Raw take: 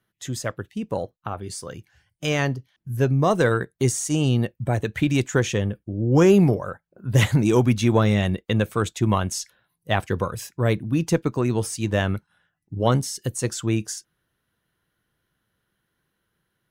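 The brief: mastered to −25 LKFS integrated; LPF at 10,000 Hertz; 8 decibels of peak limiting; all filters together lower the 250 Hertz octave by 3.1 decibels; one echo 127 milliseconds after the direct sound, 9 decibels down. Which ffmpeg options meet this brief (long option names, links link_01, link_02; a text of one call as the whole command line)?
ffmpeg -i in.wav -af "lowpass=10000,equalizer=frequency=250:width_type=o:gain=-4.5,alimiter=limit=-14dB:level=0:latency=1,aecho=1:1:127:0.355,volume=1dB" out.wav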